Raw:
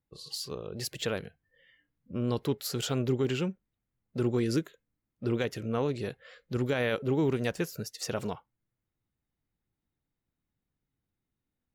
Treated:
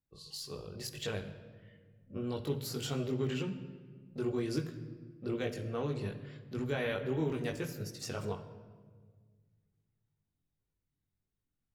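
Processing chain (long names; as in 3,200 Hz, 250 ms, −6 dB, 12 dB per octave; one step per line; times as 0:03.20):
multi-voice chorus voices 6, 0.85 Hz, delay 20 ms, depth 1.1 ms
on a send: convolution reverb RT60 1.6 s, pre-delay 3 ms, DRR 8.5 dB
on the sum: level −3 dB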